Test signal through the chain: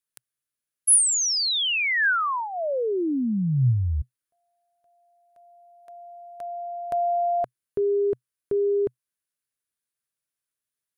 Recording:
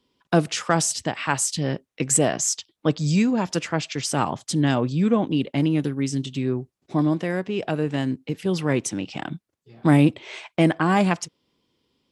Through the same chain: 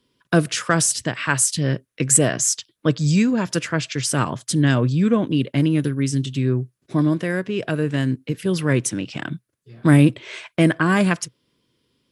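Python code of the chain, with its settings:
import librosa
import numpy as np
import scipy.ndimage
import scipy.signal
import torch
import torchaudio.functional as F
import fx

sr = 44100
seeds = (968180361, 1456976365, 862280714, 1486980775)

y = fx.graphic_eq_31(x, sr, hz=(125, 800, 1600, 10000), db=(7, -10, 5, 10))
y = y * librosa.db_to_amplitude(2.0)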